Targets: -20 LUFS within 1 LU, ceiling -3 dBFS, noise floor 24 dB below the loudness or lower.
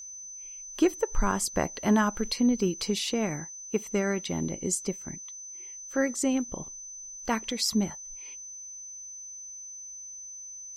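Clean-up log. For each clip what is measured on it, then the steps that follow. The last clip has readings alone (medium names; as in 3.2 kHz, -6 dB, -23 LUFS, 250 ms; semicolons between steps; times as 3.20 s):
steady tone 6.1 kHz; tone level -40 dBFS; loudness -30.5 LUFS; peak level -10.5 dBFS; loudness target -20.0 LUFS
-> band-stop 6.1 kHz, Q 30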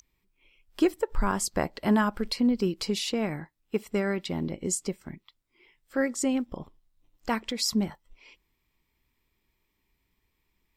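steady tone not found; loudness -28.5 LUFS; peak level -10.5 dBFS; loudness target -20.0 LUFS
-> trim +8.5 dB; peak limiter -3 dBFS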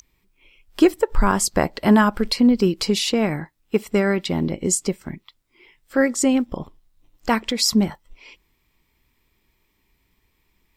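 loudness -20.5 LUFS; peak level -3.0 dBFS; noise floor -68 dBFS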